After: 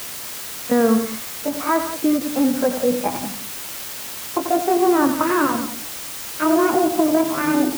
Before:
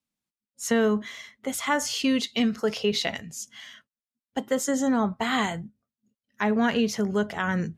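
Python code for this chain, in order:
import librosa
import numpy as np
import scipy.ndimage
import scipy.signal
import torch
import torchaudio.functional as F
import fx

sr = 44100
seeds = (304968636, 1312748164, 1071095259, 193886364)

p1 = fx.pitch_glide(x, sr, semitones=8.5, runs='starting unshifted')
p2 = fx.over_compress(p1, sr, threshold_db=-26.0, ratio=-0.5)
p3 = p1 + F.gain(torch.from_numpy(p2), -2.0).numpy()
p4 = scipy.signal.sosfilt(scipy.signal.butter(4, 1500.0, 'lowpass', fs=sr, output='sos'), p3)
p5 = fx.echo_multitap(p4, sr, ms=(89, 177), db=(-9.5, -12.5))
p6 = fx.quant_dither(p5, sr, seeds[0], bits=6, dither='triangular')
p7 = scipy.signal.sosfilt(scipy.signal.butter(2, 42.0, 'highpass', fs=sr, output='sos'), p6)
p8 = fx.end_taper(p7, sr, db_per_s=190.0)
y = F.gain(torch.from_numpy(p8), 4.5).numpy()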